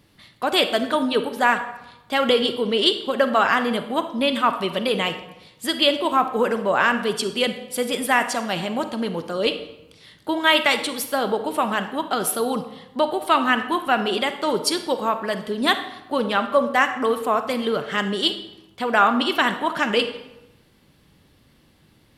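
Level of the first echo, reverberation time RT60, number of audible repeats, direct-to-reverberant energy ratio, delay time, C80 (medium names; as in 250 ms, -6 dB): no echo, 0.95 s, no echo, 9.0 dB, no echo, 13.0 dB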